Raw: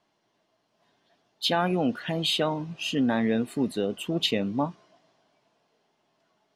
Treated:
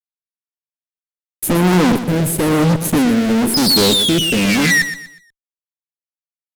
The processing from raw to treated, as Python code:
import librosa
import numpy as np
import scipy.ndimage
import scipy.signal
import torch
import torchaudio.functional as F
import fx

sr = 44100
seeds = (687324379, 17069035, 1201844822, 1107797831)

p1 = scipy.signal.sosfilt(scipy.signal.cheby2(4, 60, [1200.0, 4300.0], 'bandstop', fs=sr, output='sos'), x)
p2 = fx.spec_paint(p1, sr, seeds[0], shape='fall', start_s=3.54, length_s=1.28, low_hz=1800.0, high_hz=5100.0, level_db=-38.0)
p3 = np.clip(10.0 ** (34.0 / 20.0) * p2, -1.0, 1.0) / 10.0 ** (34.0 / 20.0)
p4 = p2 + (p3 * 10.0 ** (-5.5 / 20.0))
p5 = fx.cheby_harmonics(p4, sr, harmonics=(4,), levels_db=(-15,), full_scale_db=-13.5)
p6 = fx.fuzz(p5, sr, gain_db=52.0, gate_db=-50.0)
p7 = fx.rotary(p6, sr, hz=1.0)
p8 = fx.echo_feedback(p7, sr, ms=121, feedback_pct=34, wet_db=-11)
y = p8 * 10.0 ** (2.0 / 20.0)